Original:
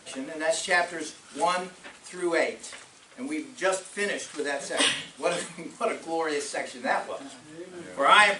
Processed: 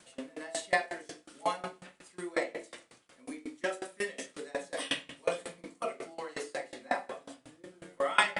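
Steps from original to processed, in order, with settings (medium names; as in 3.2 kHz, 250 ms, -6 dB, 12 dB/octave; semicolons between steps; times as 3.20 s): treble shelf 9.8 kHz +5.5 dB; reverberation RT60 0.75 s, pre-delay 6 ms, DRR 0.5 dB; sawtooth tremolo in dB decaying 5.5 Hz, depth 25 dB; trim -5 dB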